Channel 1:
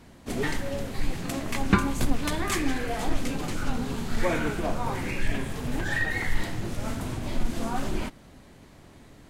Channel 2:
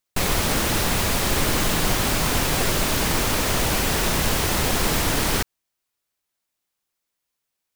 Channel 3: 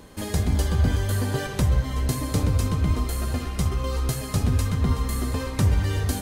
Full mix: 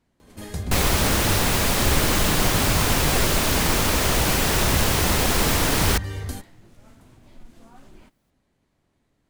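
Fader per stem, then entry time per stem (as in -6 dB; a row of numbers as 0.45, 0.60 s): -19.5, +1.0, -6.5 dB; 0.00, 0.55, 0.20 s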